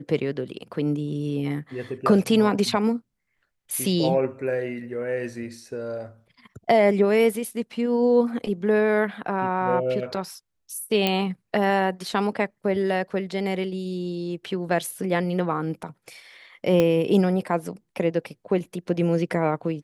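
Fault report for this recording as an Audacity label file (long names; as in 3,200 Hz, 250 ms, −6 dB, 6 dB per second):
11.070000	11.070000	click −8 dBFS
16.800000	16.800000	click −9 dBFS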